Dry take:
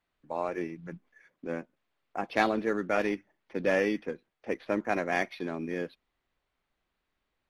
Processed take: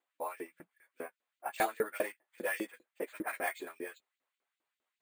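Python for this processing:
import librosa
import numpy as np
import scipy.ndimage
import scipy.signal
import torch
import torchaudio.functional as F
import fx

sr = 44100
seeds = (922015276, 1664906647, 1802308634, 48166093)

y = fx.chorus_voices(x, sr, voices=6, hz=0.27, base_ms=12, depth_ms=4.3, mix_pct=25)
y = fx.stretch_vocoder_free(y, sr, factor=0.67)
y = fx.vibrato(y, sr, rate_hz=0.77, depth_cents=12.0)
y = fx.filter_lfo_highpass(y, sr, shape='saw_up', hz=5.0, low_hz=290.0, high_hz=4300.0, q=1.3)
y = np.repeat(scipy.signal.resample_poly(y, 1, 4), 4)[:len(y)]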